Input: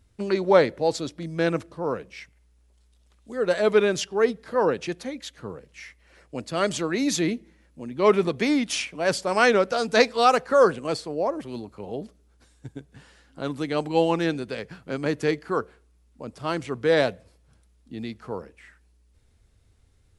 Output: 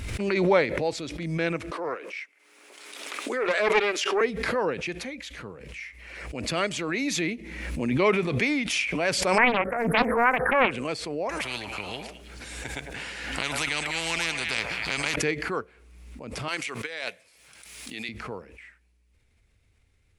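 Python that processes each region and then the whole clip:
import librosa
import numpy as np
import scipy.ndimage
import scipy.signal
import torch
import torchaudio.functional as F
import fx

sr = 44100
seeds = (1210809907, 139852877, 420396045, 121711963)

y = fx.chain(x, sr, fx.steep_highpass(hz=290.0, slope=36),
    fx.peak_eq(hz=1300.0, db=5.0, octaves=0.7),
    fx.doppler_dist(depth_ms=0.37), at=(1.71, 4.21))
y = fx.chain(y, sr, fx.brickwall_bandstop(low_hz=1900.0, high_hz=9200.0),
    fx.doppler_dist(depth_ms=0.94), at=(9.38, 10.71))
y = fx.chain(y, sr, fx.notch(hz=1100.0, q=14.0),
    fx.echo_stepped(ms=106, hz=820.0, octaves=1.4, feedback_pct=70, wet_db=-8.5),
    fx.spectral_comp(ratio=4.0), at=(11.29, 15.16))
y = fx.chain(y, sr, fx.highpass(hz=1200.0, slope=6),
    fx.high_shelf(hz=3700.0, db=8.0),
    fx.over_compress(threshold_db=-31.0, ratio=-0.5), at=(16.48, 18.09))
y = fx.peak_eq(y, sr, hz=2300.0, db=11.0, octaves=0.66)
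y = fx.pre_swell(y, sr, db_per_s=36.0)
y = y * 10.0 ** (-5.5 / 20.0)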